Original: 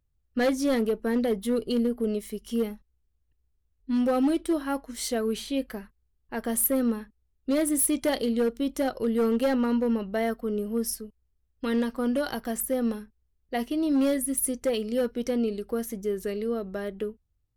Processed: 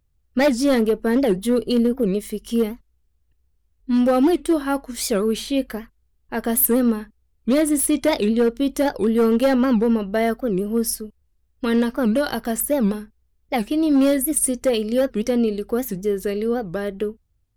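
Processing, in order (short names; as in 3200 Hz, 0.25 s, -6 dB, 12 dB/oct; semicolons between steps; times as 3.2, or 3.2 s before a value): 7.6–8.58 high shelf 9200 Hz -7.5 dB; record warp 78 rpm, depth 250 cents; gain +7 dB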